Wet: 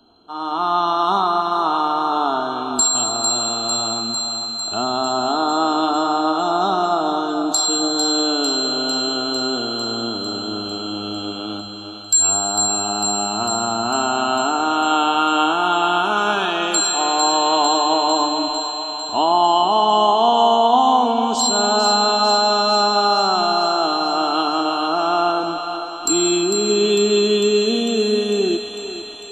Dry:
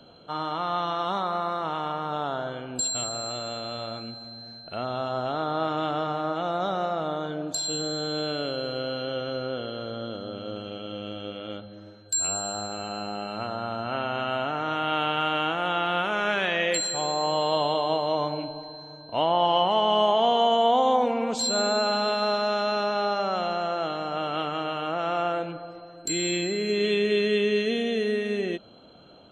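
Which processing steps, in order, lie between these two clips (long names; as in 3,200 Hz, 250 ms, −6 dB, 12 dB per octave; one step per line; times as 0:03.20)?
automatic gain control gain up to 12.5 dB
phaser with its sweep stopped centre 540 Hz, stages 6
feedback echo with a high-pass in the loop 450 ms, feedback 69%, high-pass 610 Hz, level −7 dB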